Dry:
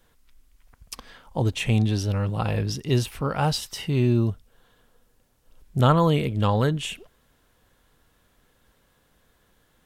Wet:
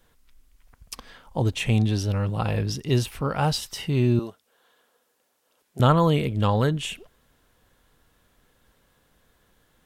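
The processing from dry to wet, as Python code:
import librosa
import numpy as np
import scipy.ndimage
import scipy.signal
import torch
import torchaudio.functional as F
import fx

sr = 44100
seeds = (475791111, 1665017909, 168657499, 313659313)

y = fx.highpass(x, sr, hz=410.0, slope=12, at=(4.19, 5.8))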